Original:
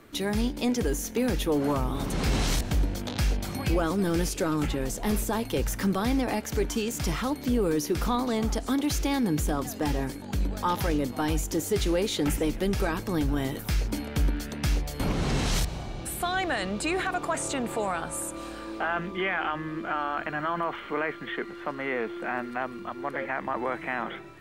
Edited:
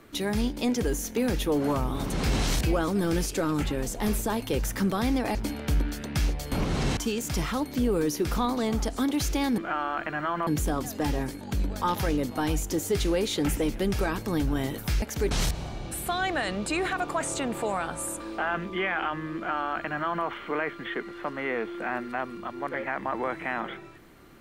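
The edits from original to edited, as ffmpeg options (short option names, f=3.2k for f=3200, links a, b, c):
-filter_complex "[0:a]asplit=9[a][b][c][d][e][f][g][h][i];[a]atrim=end=2.632[j];[b]atrim=start=3.658:end=6.382[k];[c]atrim=start=13.828:end=15.452[l];[d]atrim=start=6.668:end=9.282[m];[e]atrim=start=19.778:end=20.672[n];[f]atrim=start=9.278:end=13.832[o];[g]atrim=start=6.378:end=6.672[p];[h]atrim=start=15.448:end=18.342[q];[i]atrim=start=18.618[r];[j][k]acrossfade=d=0.004:c1=hsin:c2=hsin[s];[s][l]acrossfade=d=0.004:c1=hsin:c2=hsin[t];[t][m]acrossfade=d=0.004:c1=hsin:c2=hsin[u];[u][n]acrossfade=d=0.004:c1=hsin:c2=hsin[v];[v][o]acrossfade=d=0.004:c1=hsin:c2=hsin[w];[w][p]acrossfade=d=0.004:c1=hsin:c2=hsin[x];[x][q]acrossfade=d=0.004:c1=hsin:c2=hsin[y];[y][r]acrossfade=d=0.004:c1=hsin:c2=hsin"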